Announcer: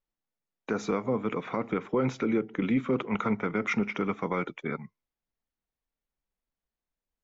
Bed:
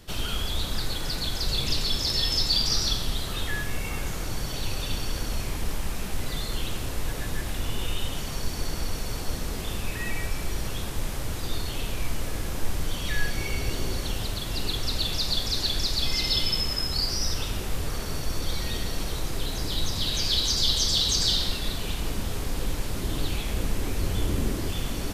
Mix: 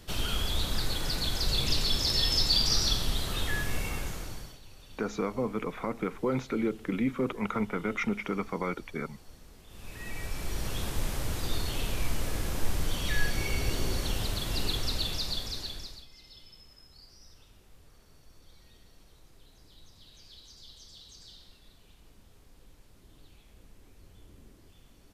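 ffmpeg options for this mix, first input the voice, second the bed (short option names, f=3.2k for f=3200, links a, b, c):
-filter_complex "[0:a]adelay=4300,volume=-2.5dB[a];[1:a]volume=19dB,afade=t=out:st=3.79:d=0.8:silence=0.0944061,afade=t=in:st=9.68:d=1.18:silence=0.0944061,afade=t=out:st=14.62:d=1.44:silence=0.0473151[b];[a][b]amix=inputs=2:normalize=0"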